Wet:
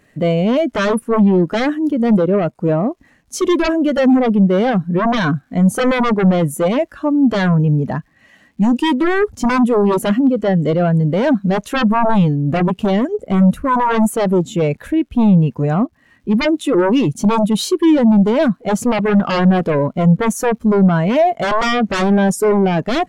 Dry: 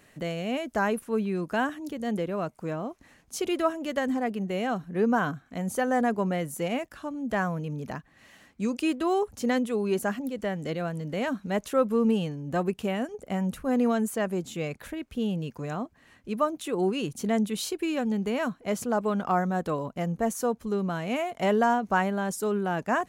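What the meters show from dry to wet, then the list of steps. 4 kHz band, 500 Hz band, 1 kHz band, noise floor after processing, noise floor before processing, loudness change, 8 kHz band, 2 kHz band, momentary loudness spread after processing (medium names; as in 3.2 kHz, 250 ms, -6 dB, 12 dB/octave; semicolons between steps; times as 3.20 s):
+12.0 dB, +12.0 dB, +10.5 dB, -54 dBFS, -60 dBFS, +13.5 dB, +9.0 dB, +10.0 dB, 5 LU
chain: crackle 360 per s -50 dBFS; sine folder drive 14 dB, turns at -12 dBFS; spectral contrast expander 1.5:1; trim +5 dB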